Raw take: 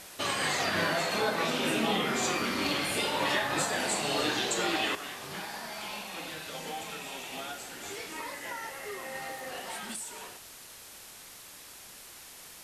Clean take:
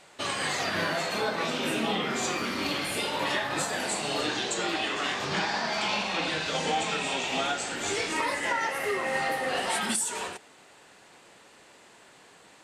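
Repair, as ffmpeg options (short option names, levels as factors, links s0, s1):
-af "adeclick=t=4,afwtdn=0.0045,asetnsamples=n=441:p=0,asendcmd='4.95 volume volume 11dB',volume=1"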